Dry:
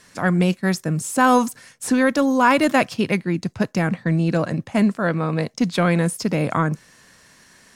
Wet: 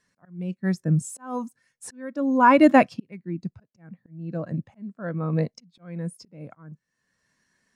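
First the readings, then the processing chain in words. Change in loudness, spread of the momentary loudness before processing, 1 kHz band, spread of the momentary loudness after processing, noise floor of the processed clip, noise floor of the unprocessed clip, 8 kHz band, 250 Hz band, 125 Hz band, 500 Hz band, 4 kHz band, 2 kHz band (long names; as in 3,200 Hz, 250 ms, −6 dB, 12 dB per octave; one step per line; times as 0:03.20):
−3.5 dB, 8 LU, −3.0 dB, 24 LU, −79 dBFS, −53 dBFS, below −10 dB, −5.0 dB, −6.5 dB, −5.0 dB, −13.5 dB, −8.0 dB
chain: volume swells 762 ms
every bin expanded away from the loudest bin 1.5 to 1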